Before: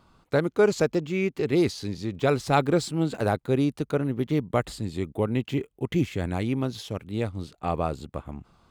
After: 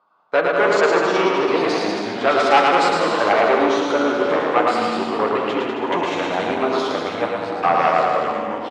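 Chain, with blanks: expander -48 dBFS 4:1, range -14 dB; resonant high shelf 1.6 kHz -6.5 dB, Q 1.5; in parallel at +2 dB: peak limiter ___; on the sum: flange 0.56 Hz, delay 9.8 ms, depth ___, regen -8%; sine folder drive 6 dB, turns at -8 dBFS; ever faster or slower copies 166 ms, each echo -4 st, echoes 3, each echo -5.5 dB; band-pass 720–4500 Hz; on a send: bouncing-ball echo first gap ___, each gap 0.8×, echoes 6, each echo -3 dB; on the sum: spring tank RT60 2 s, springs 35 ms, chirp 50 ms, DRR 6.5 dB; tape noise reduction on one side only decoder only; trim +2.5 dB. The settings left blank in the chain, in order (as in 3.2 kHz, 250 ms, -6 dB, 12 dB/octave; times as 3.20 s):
-18.5 dBFS, 1.1 ms, 110 ms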